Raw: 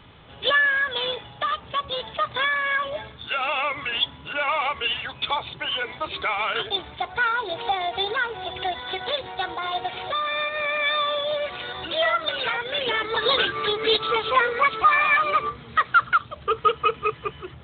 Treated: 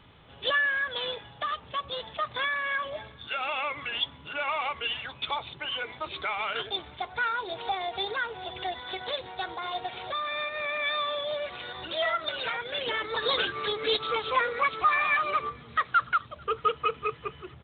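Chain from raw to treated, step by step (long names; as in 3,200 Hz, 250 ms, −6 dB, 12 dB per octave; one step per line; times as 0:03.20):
slap from a distant wall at 76 metres, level −29 dB
level −6 dB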